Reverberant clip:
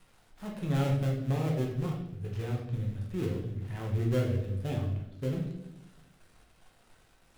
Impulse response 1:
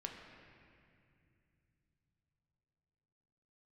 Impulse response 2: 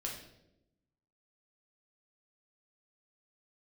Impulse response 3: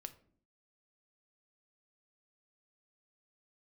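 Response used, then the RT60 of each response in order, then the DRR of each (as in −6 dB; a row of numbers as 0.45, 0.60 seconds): 2; 2.5, 0.85, 0.55 seconds; 1.0, −2.0, 9.0 decibels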